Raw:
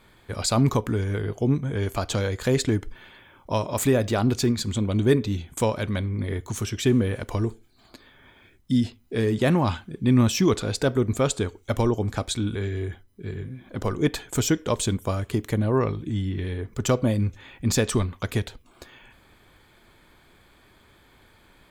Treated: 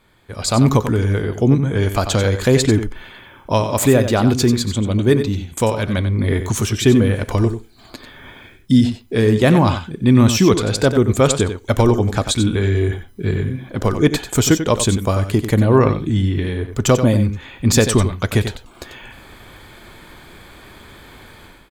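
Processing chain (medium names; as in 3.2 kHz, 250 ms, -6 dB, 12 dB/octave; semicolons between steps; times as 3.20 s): level rider gain up to 16 dB; on a send: delay 92 ms -9.5 dB; on the sum: trim -1.5 dB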